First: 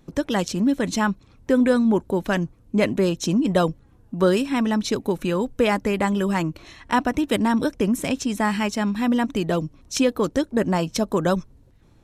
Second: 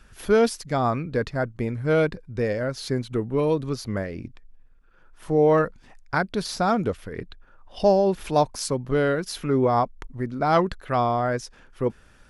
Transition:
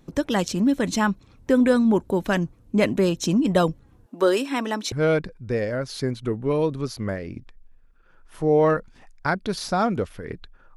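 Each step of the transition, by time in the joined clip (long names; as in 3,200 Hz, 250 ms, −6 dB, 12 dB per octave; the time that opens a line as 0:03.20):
first
0:04.06–0:04.92: high-pass filter 280 Hz 24 dB per octave
0:04.92: continue with second from 0:01.80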